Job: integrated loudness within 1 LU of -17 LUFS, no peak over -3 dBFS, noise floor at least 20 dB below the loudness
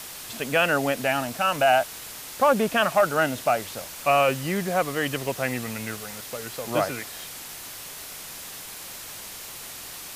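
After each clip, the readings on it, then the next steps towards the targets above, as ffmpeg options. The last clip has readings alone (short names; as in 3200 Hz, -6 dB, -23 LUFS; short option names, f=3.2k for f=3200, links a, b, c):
noise floor -39 dBFS; noise floor target -45 dBFS; loudness -24.5 LUFS; peak -9.5 dBFS; loudness target -17.0 LUFS
-> -af "afftdn=nr=6:nf=-39"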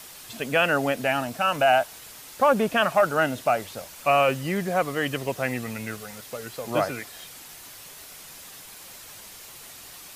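noise floor -45 dBFS; loudness -24.5 LUFS; peak -9.5 dBFS; loudness target -17.0 LUFS
-> -af "volume=7.5dB,alimiter=limit=-3dB:level=0:latency=1"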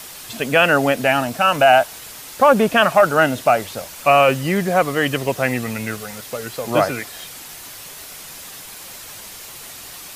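loudness -17.0 LUFS; peak -3.0 dBFS; noise floor -37 dBFS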